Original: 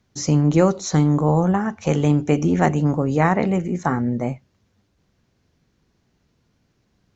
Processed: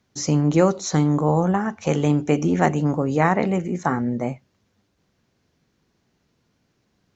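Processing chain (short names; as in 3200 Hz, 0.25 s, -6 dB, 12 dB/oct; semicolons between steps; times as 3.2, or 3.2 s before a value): low shelf 100 Hz -9.5 dB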